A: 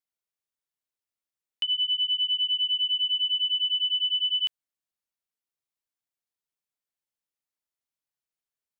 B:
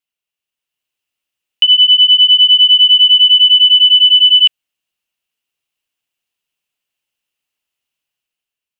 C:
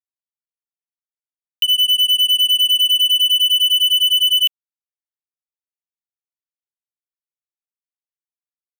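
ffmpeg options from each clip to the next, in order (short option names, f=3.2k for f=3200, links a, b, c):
-filter_complex "[0:a]acrossover=split=2900[a][b];[b]acompressor=threshold=-32dB:ratio=4:attack=1:release=60[c];[a][c]amix=inputs=2:normalize=0,equalizer=f=2.8k:w=3.3:g=14,dynaudnorm=f=200:g=7:m=6.5dB,volume=3dB"
-af "acrusher=bits=7:mix=0:aa=0.5,aeval=exprs='0.891*(cos(1*acos(clip(val(0)/0.891,-1,1)))-cos(1*PI/2))+0.0141*(cos(2*acos(clip(val(0)/0.891,-1,1)))-cos(2*PI/2))+0.0112*(cos(6*acos(clip(val(0)/0.891,-1,1)))-cos(6*PI/2))+0.0447*(cos(7*acos(clip(val(0)/0.891,-1,1)))-cos(7*PI/2))+0.0126*(cos(8*acos(clip(val(0)/0.891,-1,1)))-cos(8*PI/2))':c=same,aderivative"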